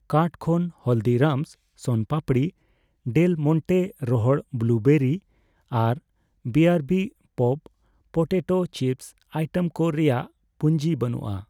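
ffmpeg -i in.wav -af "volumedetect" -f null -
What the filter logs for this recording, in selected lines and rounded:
mean_volume: -23.5 dB
max_volume: -8.3 dB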